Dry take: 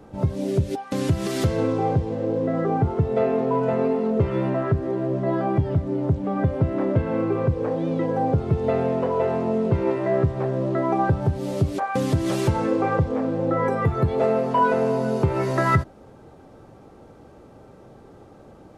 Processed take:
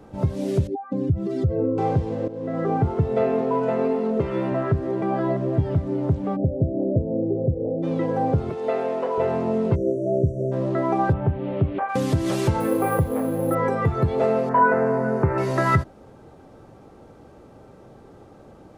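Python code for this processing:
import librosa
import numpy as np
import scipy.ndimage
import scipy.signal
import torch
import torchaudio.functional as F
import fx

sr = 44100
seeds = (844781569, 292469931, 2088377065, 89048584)

y = fx.spec_expand(x, sr, power=1.9, at=(0.67, 1.78))
y = fx.peak_eq(y, sr, hz=99.0, db=-11.5, octaves=0.77, at=(3.41, 4.52))
y = fx.ellip_lowpass(y, sr, hz=660.0, order=4, stop_db=50, at=(6.35, 7.82), fade=0.02)
y = fx.highpass(y, sr, hz=370.0, slope=12, at=(8.5, 9.18))
y = fx.brickwall_bandstop(y, sr, low_hz=680.0, high_hz=5600.0, at=(9.74, 10.51), fade=0.02)
y = fx.steep_lowpass(y, sr, hz=3000.0, slope=36, at=(11.12, 11.88), fade=0.02)
y = fx.resample_bad(y, sr, factor=4, down='filtered', up='hold', at=(12.6, 13.55))
y = fx.high_shelf_res(y, sr, hz=2400.0, db=-11.0, q=3.0, at=(14.49, 15.38))
y = fx.edit(y, sr, fx.fade_in_from(start_s=2.28, length_s=0.41, floor_db=-14.0),
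    fx.reverse_span(start_s=5.02, length_s=0.56), tone=tone)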